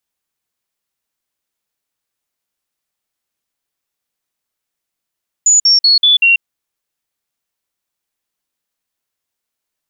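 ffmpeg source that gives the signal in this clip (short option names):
-f lavfi -i "aevalsrc='0.501*clip(min(mod(t,0.19),0.14-mod(t,0.19))/0.005,0,1)*sin(2*PI*6920*pow(2,-floor(t/0.19)/3)*mod(t,0.19))':d=0.95:s=44100"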